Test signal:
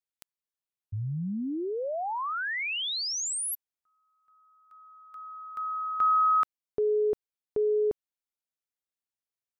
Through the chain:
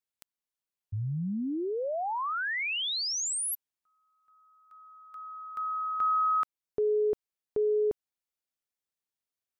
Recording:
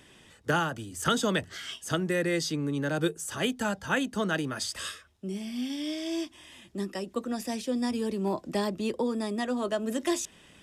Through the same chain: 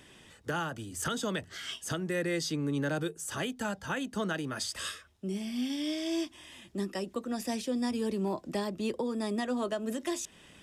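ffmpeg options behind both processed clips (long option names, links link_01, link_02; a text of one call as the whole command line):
ffmpeg -i in.wav -af "alimiter=limit=-23dB:level=0:latency=1:release=333" out.wav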